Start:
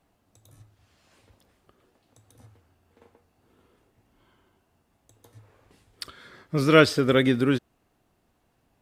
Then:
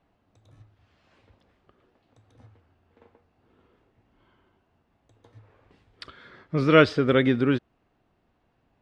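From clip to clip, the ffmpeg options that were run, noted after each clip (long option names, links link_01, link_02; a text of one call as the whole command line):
ffmpeg -i in.wav -af "lowpass=3400" out.wav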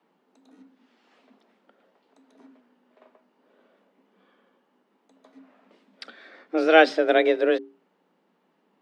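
ffmpeg -i in.wav -af "bandreject=frequency=60:width_type=h:width=6,bandreject=frequency=120:width_type=h:width=6,bandreject=frequency=180:width_type=h:width=6,bandreject=frequency=240:width_type=h:width=6,afreqshift=160,volume=1dB" out.wav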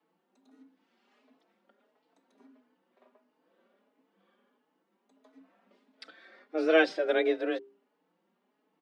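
ffmpeg -i in.wav -filter_complex "[0:a]asplit=2[link_01][link_02];[link_02]adelay=4.2,afreqshift=1.5[link_03];[link_01][link_03]amix=inputs=2:normalize=1,volume=-4.5dB" out.wav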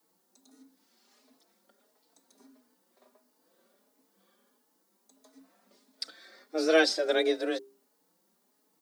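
ffmpeg -i in.wav -af "aexciter=amount=6.7:drive=5.9:freq=4100" out.wav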